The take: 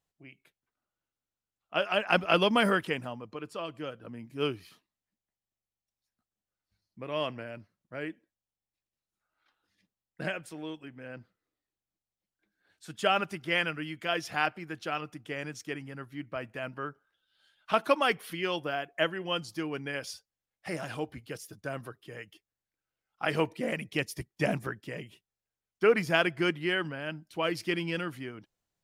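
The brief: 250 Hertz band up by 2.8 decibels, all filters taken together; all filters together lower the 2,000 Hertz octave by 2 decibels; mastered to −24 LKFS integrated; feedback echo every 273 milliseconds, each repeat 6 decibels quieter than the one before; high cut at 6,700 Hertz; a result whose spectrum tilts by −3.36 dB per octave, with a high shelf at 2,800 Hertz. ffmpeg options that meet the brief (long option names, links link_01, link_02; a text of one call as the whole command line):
ffmpeg -i in.wav -af "lowpass=6700,equalizer=frequency=250:width_type=o:gain=4,equalizer=frequency=2000:width_type=o:gain=-4.5,highshelf=frequency=2800:gain=4,aecho=1:1:273|546|819|1092|1365|1638:0.501|0.251|0.125|0.0626|0.0313|0.0157,volume=6.5dB" out.wav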